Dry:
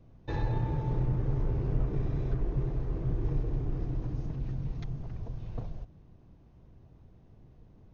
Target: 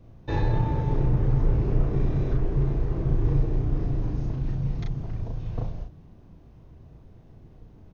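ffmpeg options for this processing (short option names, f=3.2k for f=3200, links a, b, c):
-filter_complex "[0:a]asplit=2[a][b];[b]adelay=36,volume=-3dB[c];[a][c]amix=inputs=2:normalize=0,volume=5dB"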